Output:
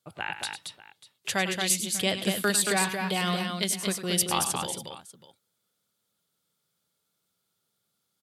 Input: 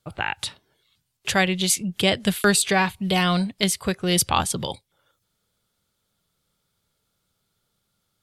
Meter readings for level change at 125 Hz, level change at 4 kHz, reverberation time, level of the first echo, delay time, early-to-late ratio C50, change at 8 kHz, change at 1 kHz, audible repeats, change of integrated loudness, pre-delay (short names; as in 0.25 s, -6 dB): -8.0 dB, -4.5 dB, none, -11.5 dB, 0.1 s, none, -2.0 dB, -6.0 dB, 3, -5.0 dB, none